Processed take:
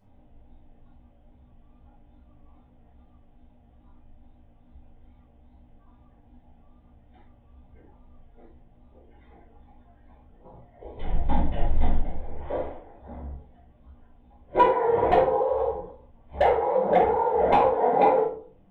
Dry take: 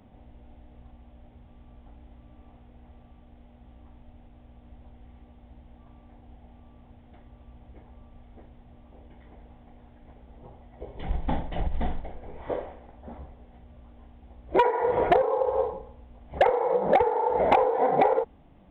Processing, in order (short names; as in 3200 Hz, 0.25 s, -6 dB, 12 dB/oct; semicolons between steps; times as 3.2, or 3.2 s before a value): vibrato 2.4 Hz 70 cents; shoebox room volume 400 m³, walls furnished, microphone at 5 m; spectral noise reduction 7 dB; gain -8 dB